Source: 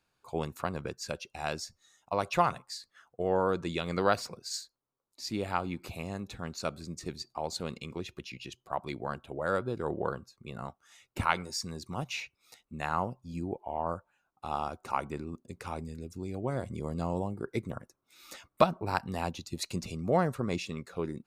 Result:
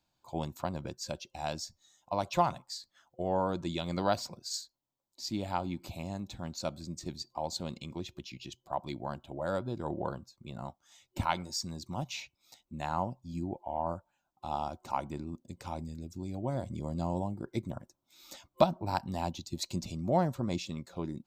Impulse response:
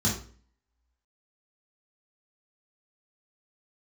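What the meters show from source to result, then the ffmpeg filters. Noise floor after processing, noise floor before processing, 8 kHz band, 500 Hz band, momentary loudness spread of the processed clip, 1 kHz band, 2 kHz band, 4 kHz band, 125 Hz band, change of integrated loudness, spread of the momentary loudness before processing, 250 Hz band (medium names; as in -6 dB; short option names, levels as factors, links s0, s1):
-82 dBFS, -81 dBFS, -0.5 dB, -2.5 dB, 13 LU, -1.5 dB, -7.5 dB, -0.5 dB, 0.0 dB, -1.5 dB, 14 LU, 0.0 dB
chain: -af "superequalizer=7b=0.355:10b=0.398:11b=0.398:12b=0.501:16b=0.355"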